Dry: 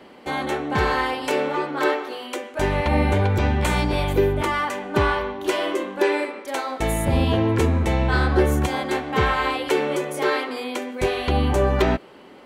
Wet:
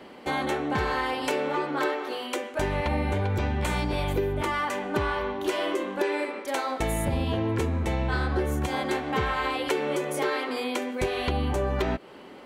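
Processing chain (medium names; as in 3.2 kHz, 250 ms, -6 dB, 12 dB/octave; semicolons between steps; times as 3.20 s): compression 4:1, threshold -24 dBFS, peak gain reduction 10 dB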